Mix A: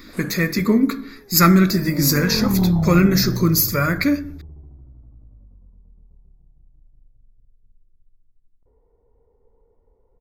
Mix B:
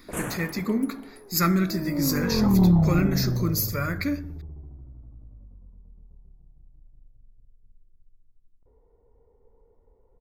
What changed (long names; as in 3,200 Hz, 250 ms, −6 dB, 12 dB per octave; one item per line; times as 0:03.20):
speech −9.0 dB
first sound +12.0 dB